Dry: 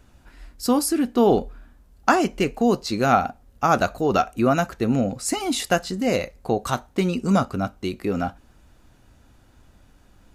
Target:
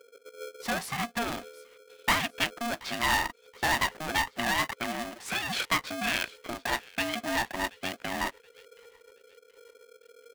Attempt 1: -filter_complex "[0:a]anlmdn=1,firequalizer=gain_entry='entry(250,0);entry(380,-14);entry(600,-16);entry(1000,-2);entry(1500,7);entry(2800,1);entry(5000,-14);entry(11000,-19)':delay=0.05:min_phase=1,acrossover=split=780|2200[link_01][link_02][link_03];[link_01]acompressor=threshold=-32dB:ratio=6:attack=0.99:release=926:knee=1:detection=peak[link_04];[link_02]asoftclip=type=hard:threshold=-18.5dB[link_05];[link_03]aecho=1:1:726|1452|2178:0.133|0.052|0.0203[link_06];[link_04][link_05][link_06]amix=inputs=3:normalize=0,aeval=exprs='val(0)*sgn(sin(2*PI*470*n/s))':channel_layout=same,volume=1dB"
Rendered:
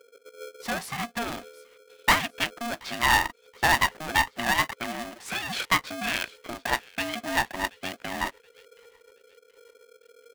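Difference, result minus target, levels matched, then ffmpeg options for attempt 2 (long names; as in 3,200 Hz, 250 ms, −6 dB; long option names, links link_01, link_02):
hard clipping: distortion −7 dB
-filter_complex "[0:a]anlmdn=1,firequalizer=gain_entry='entry(250,0);entry(380,-14);entry(600,-16);entry(1000,-2);entry(1500,7);entry(2800,1);entry(5000,-14);entry(11000,-19)':delay=0.05:min_phase=1,acrossover=split=780|2200[link_01][link_02][link_03];[link_01]acompressor=threshold=-32dB:ratio=6:attack=0.99:release=926:knee=1:detection=peak[link_04];[link_02]asoftclip=type=hard:threshold=-28.5dB[link_05];[link_03]aecho=1:1:726|1452|2178:0.133|0.052|0.0203[link_06];[link_04][link_05][link_06]amix=inputs=3:normalize=0,aeval=exprs='val(0)*sgn(sin(2*PI*470*n/s))':channel_layout=same,volume=1dB"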